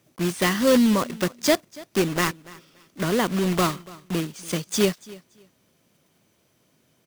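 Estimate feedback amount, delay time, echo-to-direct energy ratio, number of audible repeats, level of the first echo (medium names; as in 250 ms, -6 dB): 21%, 286 ms, -21.0 dB, 2, -21.0 dB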